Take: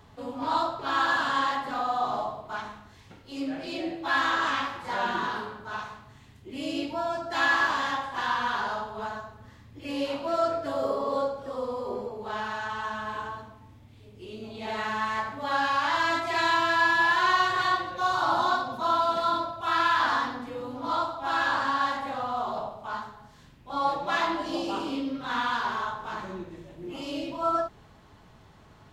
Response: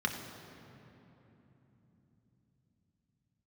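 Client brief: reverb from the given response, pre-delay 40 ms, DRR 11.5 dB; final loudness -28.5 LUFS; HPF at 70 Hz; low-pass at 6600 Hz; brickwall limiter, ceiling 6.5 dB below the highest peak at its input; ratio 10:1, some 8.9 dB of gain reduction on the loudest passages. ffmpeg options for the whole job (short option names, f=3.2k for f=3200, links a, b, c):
-filter_complex "[0:a]highpass=70,lowpass=6.6k,acompressor=threshold=-28dB:ratio=10,alimiter=level_in=2dB:limit=-24dB:level=0:latency=1,volume=-2dB,asplit=2[a][b];[1:a]atrim=start_sample=2205,adelay=40[c];[b][c]afir=irnorm=-1:irlink=0,volume=-18.5dB[d];[a][d]amix=inputs=2:normalize=0,volume=6.5dB"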